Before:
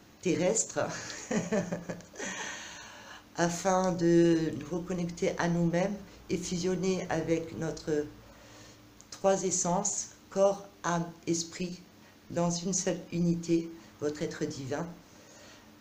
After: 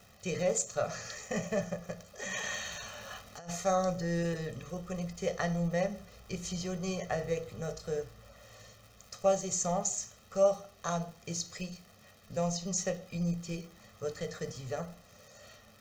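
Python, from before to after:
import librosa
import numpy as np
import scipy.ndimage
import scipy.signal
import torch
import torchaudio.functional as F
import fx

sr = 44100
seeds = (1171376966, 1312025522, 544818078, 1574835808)

y = fx.dmg_crackle(x, sr, seeds[0], per_s=150.0, level_db=-43.0)
y = y + 0.9 * np.pad(y, (int(1.6 * sr / 1000.0), 0))[:len(y)]
y = fx.over_compress(y, sr, threshold_db=-37.0, ratio=-1.0, at=(2.29, 3.48), fade=0.02)
y = y * librosa.db_to_amplitude(-5.0)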